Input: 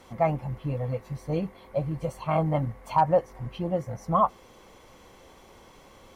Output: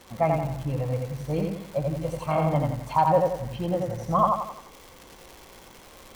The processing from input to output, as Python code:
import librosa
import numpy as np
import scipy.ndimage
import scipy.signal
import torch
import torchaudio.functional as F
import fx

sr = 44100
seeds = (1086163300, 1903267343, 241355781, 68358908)

y = fx.dmg_crackle(x, sr, seeds[0], per_s=210.0, level_db=-35.0)
y = fx.echo_feedback(y, sr, ms=87, feedback_pct=43, wet_db=-3)